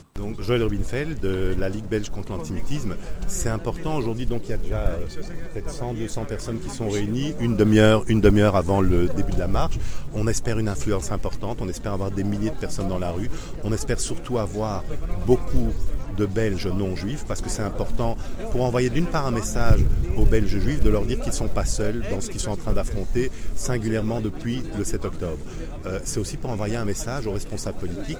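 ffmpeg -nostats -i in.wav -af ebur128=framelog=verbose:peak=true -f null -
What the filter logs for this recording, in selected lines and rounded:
Integrated loudness:
  I:         -25.3 LUFS
  Threshold: -35.4 LUFS
Loudness range:
  LRA:         8.4 LU
  Threshold: -45.2 LUFS
  LRA low:   -28.8 LUFS
  LRA high:  -20.4 LUFS
True peak:
  Peak:       -2.5 dBFS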